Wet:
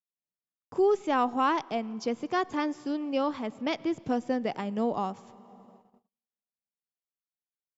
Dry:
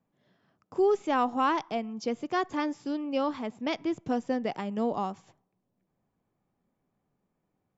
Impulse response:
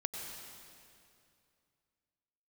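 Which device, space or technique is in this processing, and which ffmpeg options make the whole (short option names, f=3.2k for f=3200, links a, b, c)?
compressed reverb return: -filter_complex "[0:a]asplit=2[a][b];[1:a]atrim=start_sample=2205[c];[b][c]afir=irnorm=-1:irlink=0,acompressor=threshold=-40dB:ratio=10,volume=-8dB[d];[a][d]amix=inputs=2:normalize=0,agate=range=-41dB:threshold=-54dB:ratio=16:detection=peak"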